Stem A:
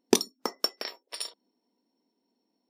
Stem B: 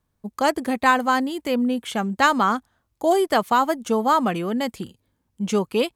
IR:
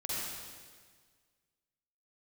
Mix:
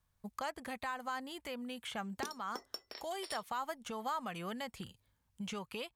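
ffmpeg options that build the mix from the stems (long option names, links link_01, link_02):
-filter_complex "[0:a]asoftclip=type=tanh:threshold=-9dB,adelay=2100,volume=-10dB[link_01];[1:a]acrossover=split=1700|3400[link_02][link_03][link_04];[link_02]acompressor=threshold=-29dB:ratio=4[link_05];[link_03]acompressor=threshold=-45dB:ratio=4[link_06];[link_04]acompressor=threshold=-51dB:ratio=4[link_07];[link_05][link_06][link_07]amix=inputs=3:normalize=0,alimiter=limit=-22dB:level=0:latency=1:release=162,equalizer=frequency=310:width_type=o:width=1.7:gain=-13.5,volume=-2.5dB[link_08];[link_01][link_08]amix=inputs=2:normalize=0,alimiter=level_in=3.5dB:limit=-24dB:level=0:latency=1:release=475,volume=-3.5dB"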